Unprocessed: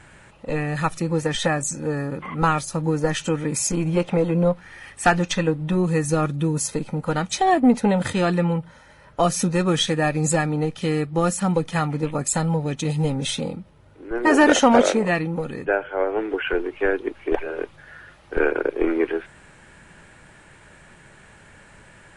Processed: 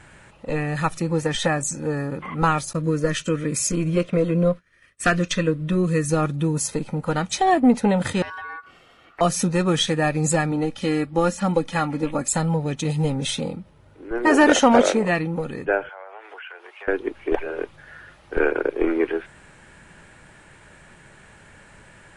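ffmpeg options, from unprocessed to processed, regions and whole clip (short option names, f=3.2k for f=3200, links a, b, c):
-filter_complex "[0:a]asettb=1/sr,asplit=3[a][b][c];[a]atrim=end=2.734[d];[b]atrim=start=2.73:end=6.1,asetpts=PTS-STARTPTS,afade=t=in:d=0.004:c=qsin,afade=t=out:st=3.366:d=0.004:c=qsin,asuperstop=centerf=830:order=4:qfactor=2.6,agate=range=-33dB:threshold=-32dB:ratio=3:release=100:detection=peak[e];[c]atrim=start=6.096[f];[d][e]acrossfade=d=0.004:c1=hsin:c2=qsin[g];[g][f]acrossfade=d=0.004:c1=qsin:c2=hsin,asettb=1/sr,asplit=3[h][i][j];[h]atrim=end=8.224[k];[i]atrim=start=8.22:end=9.21,asetpts=PTS-STARTPTS,afade=t=in:d=0.004:c=qsin,afade=t=out:st=0.986:d=0.004:c=qsin,highshelf=f=5.9k:g=-6.5,acompressor=threshold=-35dB:ratio=2.5:attack=3.2:release=140:knee=1:detection=peak,aeval=exprs='val(0)*sin(2*PI*1300*n/s)':c=same[l];[j]atrim=start=9.206[m];[k][l]acrossfade=d=0.004:c1=hsin:c2=qsin[n];[n][m]acrossfade=d=0.004:c1=qsin:c2=hsin,asettb=1/sr,asplit=3[o][p][q];[o]atrim=end=10.514[r];[p]atrim=start=10.51:end=12.28,asetpts=PTS-STARTPTS,afade=t=in:d=0.004:c=qsin,afade=t=out:st=1.766:d=0.004:c=qsin,acrossover=split=6300[s][t];[t]acompressor=threshold=-46dB:ratio=4:attack=1:release=60[u];[s][u]amix=inputs=2:normalize=0,aecho=1:1:3.6:0.46,atrim=end_sample=78057[v];[q]atrim=start=12.276[w];[r][v]acrossfade=d=0.004:c1=hsin:c2=qsin[x];[x][w]acrossfade=d=0.004:c1=qsin:c2=hsin,asettb=1/sr,asplit=3[y][z][aa];[y]atrim=end=15.894[ab];[z]atrim=start=15.89:end=16.88,asetpts=PTS-STARTPTS,afade=t=in:d=0.004:c=qsin,afade=t=out:st=0.986:d=0.004:c=qsin,highpass=f=680:w=0.5412,highpass=f=680:w=1.3066,acompressor=threshold=-37dB:ratio=4:attack=3.2:release=140:knee=1:detection=peak[ac];[aa]atrim=start=16.876[ad];[ab][ac]acrossfade=d=0.004:c1=hsin:c2=qsin[ae];[ae][ad]acrossfade=d=0.004:c1=qsin:c2=hsin"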